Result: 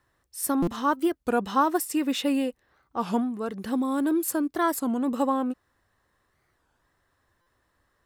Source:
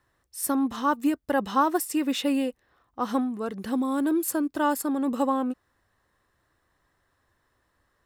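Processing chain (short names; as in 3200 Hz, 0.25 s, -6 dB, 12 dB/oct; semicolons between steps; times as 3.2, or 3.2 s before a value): stuck buffer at 0.62/7.41, samples 256, times 8; record warp 33 1/3 rpm, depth 250 cents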